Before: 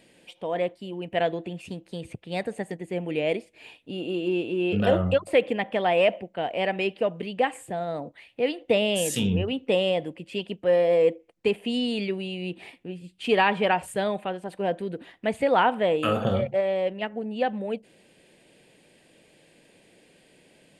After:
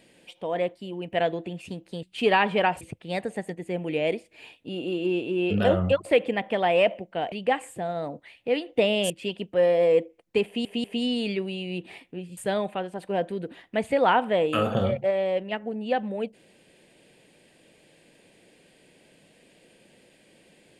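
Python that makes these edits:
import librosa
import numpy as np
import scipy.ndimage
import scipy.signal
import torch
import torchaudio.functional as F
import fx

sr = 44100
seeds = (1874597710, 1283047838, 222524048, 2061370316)

y = fx.edit(x, sr, fx.cut(start_s=6.54, length_s=0.7),
    fx.cut(start_s=9.02, length_s=1.18),
    fx.stutter(start_s=11.56, slice_s=0.19, count=3),
    fx.move(start_s=13.09, length_s=0.78, to_s=2.03), tone=tone)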